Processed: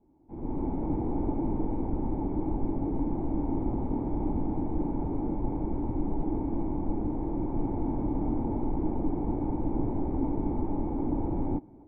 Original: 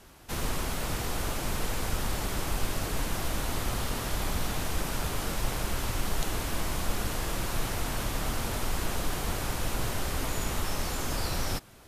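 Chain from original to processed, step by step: level rider gain up to 16.5 dB; cascade formant filter u

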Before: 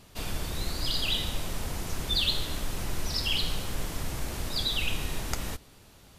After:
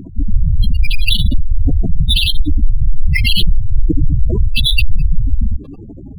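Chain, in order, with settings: spectral gate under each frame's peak -10 dB strong; peaking EQ 300 Hz +11.5 dB 0.82 oct; loudness maximiser +24 dB; decimation joined by straight lines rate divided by 6×; trim -1 dB

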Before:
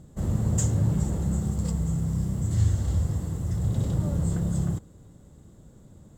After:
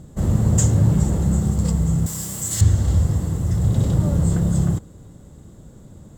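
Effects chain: 2.06–2.61 s: tilt EQ +4.5 dB/octave; trim +7.5 dB

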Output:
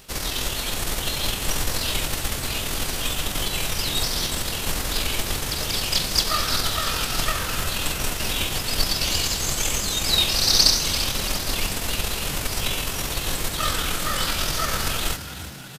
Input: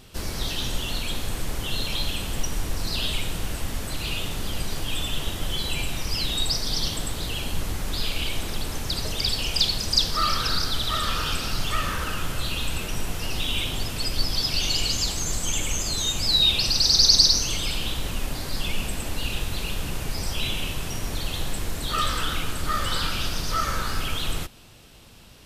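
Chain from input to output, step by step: formants flattened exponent 0.6; granular stretch 0.62×, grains 46 ms; frequency-shifting echo 340 ms, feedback 58%, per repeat +60 Hz, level -12.5 dB; trim +1 dB

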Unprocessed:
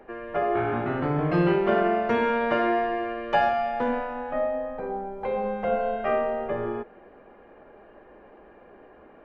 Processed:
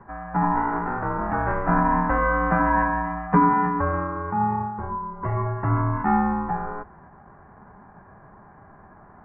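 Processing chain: mistuned SSB +100 Hz 520–2100 Hz; ring modulator 510 Hz; formant shift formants -6 st; trim +8.5 dB

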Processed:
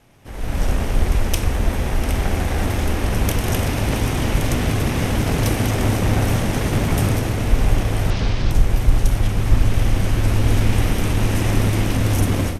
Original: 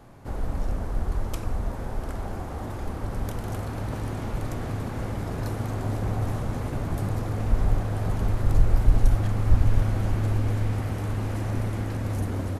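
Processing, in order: comb filter that takes the minimum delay 0.34 ms; tilt shelf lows -4.5 dB, about 1.3 kHz; on a send: bucket-brigade echo 327 ms, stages 1024, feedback 81%, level -8 dB; on the sum: level rider gain up to 15.5 dB; 8.10–8.51 s: resonant low-pass 4.6 kHz, resonance Q 2.2; trim -1 dB; Vorbis 128 kbps 32 kHz

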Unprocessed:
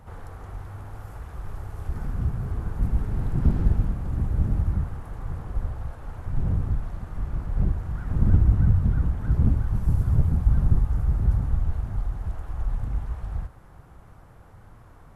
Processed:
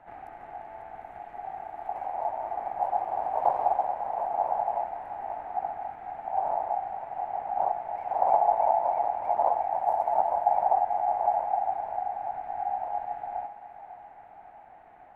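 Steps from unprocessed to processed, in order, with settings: local Wiener filter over 9 samples; ring modulator 770 Hz; thinning echo 547 ms, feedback 73%, high-pass 630 Hz, level -12 dB; trim -3 dB

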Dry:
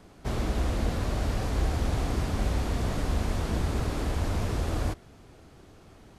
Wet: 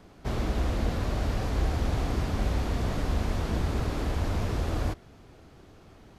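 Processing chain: peaking EQ 9.1 kHz -5.5 dB 0.86 oct

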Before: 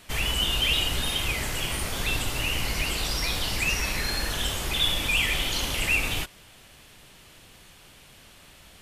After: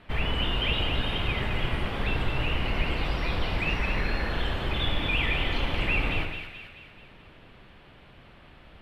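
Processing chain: distance through air 460 m; two-band feedback delay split 1.4 kHz, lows 89 ms, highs 217 ms, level -6 dB; trim +2.5 dB

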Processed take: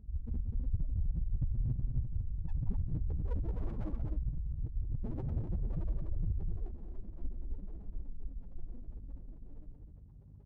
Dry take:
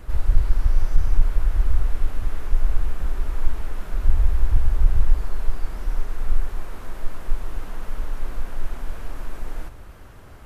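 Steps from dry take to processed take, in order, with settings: Doppler pass-by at 4.59 s, 10 m/s, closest 5.1 m; high-pass 220 Hz 6 dB/octave; bass shelf 350 Hz +8 dB; compressor with a negative ratio -33 dBFS, ratio -0.5; integer overflow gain 32 dB; loudest bins only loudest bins 4; hum 50 Hz, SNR 24 dB; loudspeakers at several distances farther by 62 m -9 dB, 87 m -6 dB; sliding maximum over 33 samples; trim +8.5 dB

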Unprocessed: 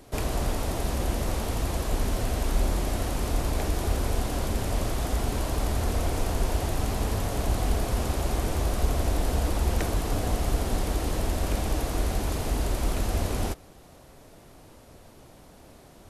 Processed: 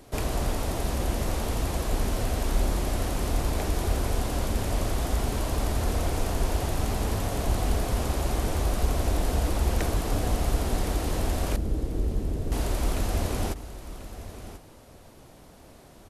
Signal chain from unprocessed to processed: 11.56–12.52 s: inverse Chebyshev low-pass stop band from 2.1 kHz, stop band 70 dB; delay 1039 ms -13.5 dB

